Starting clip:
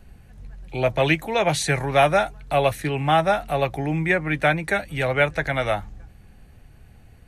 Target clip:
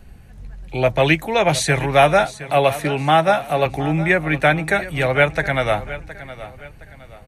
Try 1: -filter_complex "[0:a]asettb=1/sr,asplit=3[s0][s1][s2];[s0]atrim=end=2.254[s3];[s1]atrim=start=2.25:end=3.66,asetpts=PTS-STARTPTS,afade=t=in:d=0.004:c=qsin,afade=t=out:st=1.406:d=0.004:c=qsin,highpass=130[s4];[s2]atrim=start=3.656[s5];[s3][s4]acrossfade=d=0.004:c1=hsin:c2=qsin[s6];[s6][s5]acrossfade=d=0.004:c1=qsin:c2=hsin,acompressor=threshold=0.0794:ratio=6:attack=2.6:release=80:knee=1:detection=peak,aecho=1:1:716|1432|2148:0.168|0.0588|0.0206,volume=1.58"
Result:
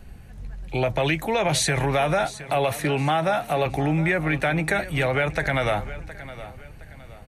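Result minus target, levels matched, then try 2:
compression: peak gain reduction +11 dB
-filter_complex "[0:a]asettb=1/sr,asplit=3[s0][s1][s2];[s0]atrim=end=2.254[s3];[s1]atrim=start=2.25:end=3.66,asetpts=PTS-STARTPTS,afade=t=in:d=0.004:c=qsin,afade=t=out:st=1.406:d=0.004:c=qsin,highpass=130[s4];[s2]atrim=start=3.656[s5];[s3][s4]acrossfade=d=0.004:c1=hsin:c2=qsin[s6];[s6][s5]acrossfade=d=0.004:c1=qsin:c2=hsin,aecho=1:1:716|1432|2148:0.168|0.0588|0.0206,volume=1.58"

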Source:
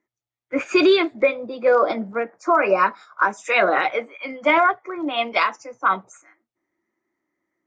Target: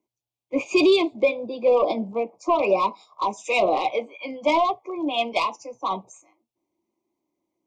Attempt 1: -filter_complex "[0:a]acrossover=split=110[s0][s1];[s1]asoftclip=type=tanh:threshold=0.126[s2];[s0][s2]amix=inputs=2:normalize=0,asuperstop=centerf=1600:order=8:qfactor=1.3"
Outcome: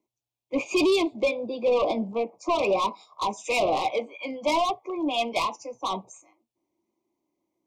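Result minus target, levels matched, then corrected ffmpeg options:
saturation: distortion +9 dB
-filter_complex "[0:a]acrossover=split=110[s0][s1];[s1]asoftclip=type=tanh:threshold=0.316[s2];[s0][s2]amix=inputs=2:normalize=0,asuperstop=centerf=1600:order=8:qfactor=1.3"

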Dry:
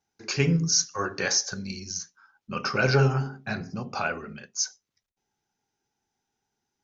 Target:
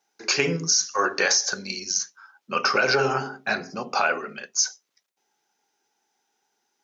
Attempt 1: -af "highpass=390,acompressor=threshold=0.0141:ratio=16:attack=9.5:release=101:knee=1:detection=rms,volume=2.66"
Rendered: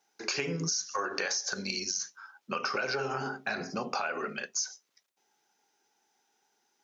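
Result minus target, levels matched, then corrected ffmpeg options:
compression: peak gain reduction +11.5 dB
-af "highpass=390,acompressor=threshold=0.0562:ratio=16:attack=9.5:release=101:knee=1:detection=rms,volume=2.66"

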